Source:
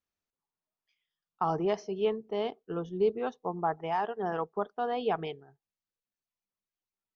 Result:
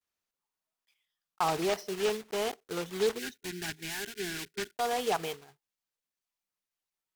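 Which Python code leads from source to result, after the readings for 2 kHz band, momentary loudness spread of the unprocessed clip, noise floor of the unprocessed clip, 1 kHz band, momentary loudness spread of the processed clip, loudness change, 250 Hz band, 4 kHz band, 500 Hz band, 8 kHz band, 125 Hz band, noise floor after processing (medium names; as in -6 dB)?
+5.5 dB, 6 LU, under -85 dBFS, -2.5 dB, 8 LU, -1.0 dB, -2.5 dB, +9.0 dB, -2.0 dB, no reading, -3.5 dB, under -85 dBFS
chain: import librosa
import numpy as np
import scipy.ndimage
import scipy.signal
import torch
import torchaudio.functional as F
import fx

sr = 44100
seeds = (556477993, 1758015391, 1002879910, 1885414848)

p1 = fx.block_float(x, sr, bits=3)
p2 = fx.vibrato(p1, sr, rate_hz=0.4, depth_cents=43.0)
p3 = fx.low_shelf(p2, sr, hz=460.0, db=-8.0)
p4 = np.clip(10.0 ** (29.0 / 20.0) * p3, -1.0, 1.0) / 10.0 ** (29.0 / 20.0)
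p5 = p3 + (p4 * librosa.db_to_amplitude(-6.0))
p6 = fx.spec_box(p5, sr, start_s=3.19, length_s=1.58, low_hz=410.0, high_hz=1400.0, gain_db=-21)
y = fx.slew_limit(p6, sr, full_power_hz=150.0)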